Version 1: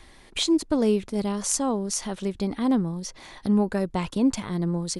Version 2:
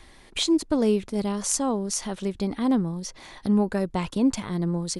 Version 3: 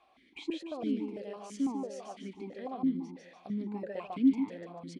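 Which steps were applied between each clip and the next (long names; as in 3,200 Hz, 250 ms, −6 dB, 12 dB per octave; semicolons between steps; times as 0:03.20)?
no processing that can be heard
soft clipping −13.5 dBFS, distortion −22 dB; repeating echo 147 ms, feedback 42%, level −4 dB; formant filter that steps through the vowels 6 Hz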